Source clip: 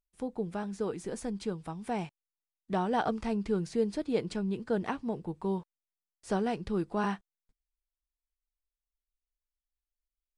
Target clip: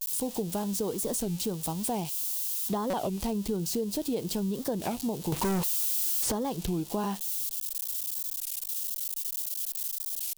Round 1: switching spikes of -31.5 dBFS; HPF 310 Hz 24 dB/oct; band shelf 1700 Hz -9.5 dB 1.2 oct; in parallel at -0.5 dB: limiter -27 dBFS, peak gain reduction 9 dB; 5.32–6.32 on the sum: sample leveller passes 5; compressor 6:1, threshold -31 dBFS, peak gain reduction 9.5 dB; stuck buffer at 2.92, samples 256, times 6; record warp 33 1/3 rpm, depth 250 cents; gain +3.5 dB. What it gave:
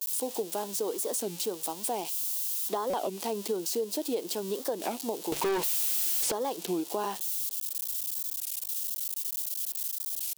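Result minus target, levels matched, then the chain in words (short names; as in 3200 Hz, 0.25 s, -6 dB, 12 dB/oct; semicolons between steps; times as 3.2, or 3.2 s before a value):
250 Hz band -6.0 dB
switching spikes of -31.5 dBFS; band shelf 1700 Hz -9.5 dB 1.2 oct; in parallel at -0.5 dB: limiter -27 dBFS, peak gain reduction 10 dB; 5.32–6.32 on the sum: sample leveller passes 5; compressor 6:1, threshold -31 dBFS, peak gain reduction 10.5 dB; stuck buffer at 2.92, samples 256, times 6; record warp 33 1/3 rpm, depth 250 cents; gain +3.5 dB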